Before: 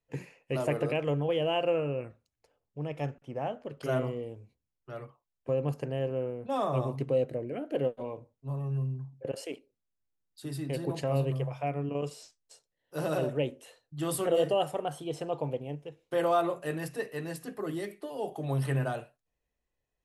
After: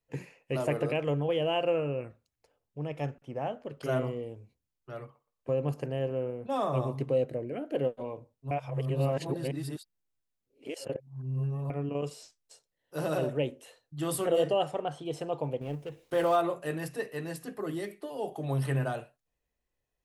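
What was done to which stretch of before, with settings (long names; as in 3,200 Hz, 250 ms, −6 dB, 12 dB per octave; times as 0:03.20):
0:05.03–0:07.19: feedback echo with a high-pass in the loop 119 ms, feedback 25%, high-pass 370 Hz, level −20.5 dB
0:08.51–0:11.70: reverse
0:14.43–0:15.04: low-pass filter 8,700 Hz → 5,100 Hz
0:15.61–0:16.36: mu-law and A-law mismatch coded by mu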